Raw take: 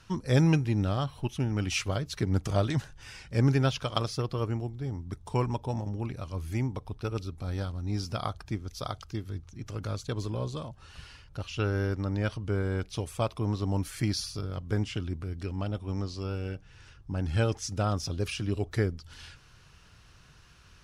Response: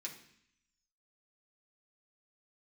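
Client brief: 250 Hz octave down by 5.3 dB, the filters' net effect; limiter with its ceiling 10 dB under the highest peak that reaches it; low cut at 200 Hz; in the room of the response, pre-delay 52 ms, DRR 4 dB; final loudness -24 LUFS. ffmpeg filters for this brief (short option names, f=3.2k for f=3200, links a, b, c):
-filter_complex "[0:a]highpass=200,equalizer=f=250:t=o:g=-4.5,alimiter=limit=-23dB:level=0:latency=1,asplit=2[a][b];[1:a]atrim=start_sample=2205,adelay=52[c];[b][c]afir=irnorm=-1:irlink=0,volume=-1.5dB[d];[a][d]amix=inputs=2:normalize=0,volume=13dB"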